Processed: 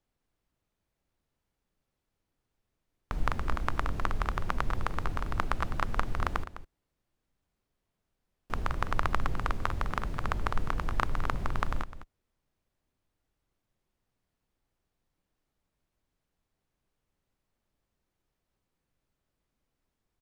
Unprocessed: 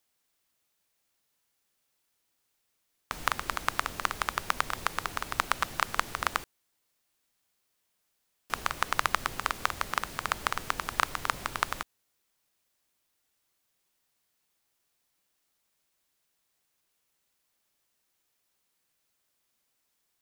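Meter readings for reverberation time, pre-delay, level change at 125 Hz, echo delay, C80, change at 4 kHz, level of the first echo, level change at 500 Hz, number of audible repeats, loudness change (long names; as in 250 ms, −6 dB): no reverb audible, no reverb audible, +11.5 dB, 206 ms, no reverb audible, −9.5 dB, −13.0 dB, +1.5 dB, 1, −2.5 dB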